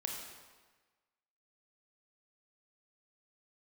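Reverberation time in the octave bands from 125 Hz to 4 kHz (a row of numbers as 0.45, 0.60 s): 1.3, 1.3, 1.3, 1.4, 1.3, 1.1 s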